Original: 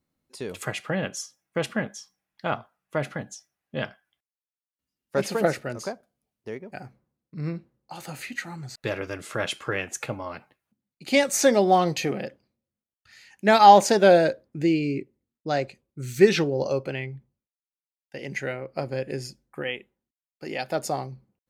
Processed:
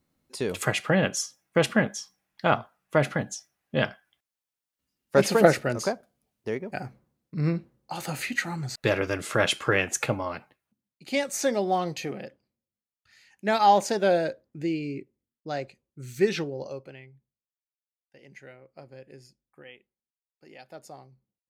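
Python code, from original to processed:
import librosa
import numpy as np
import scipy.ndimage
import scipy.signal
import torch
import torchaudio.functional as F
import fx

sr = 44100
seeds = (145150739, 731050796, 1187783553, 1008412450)

y = fx.gain(x, sr, db=fx.line((10.09, 5.0), (11.11, -6.5), (16.39, -6.5), (17.12, -17.0)))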